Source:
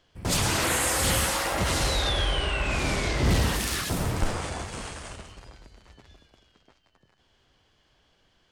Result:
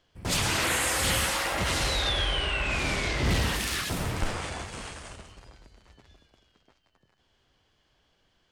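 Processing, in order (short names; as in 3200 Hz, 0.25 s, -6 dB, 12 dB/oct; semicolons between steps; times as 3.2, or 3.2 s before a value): dynamic EQ 2500 Hz, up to +5 dB, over -42 dBFS, Q 0.71; gain -3.5 dB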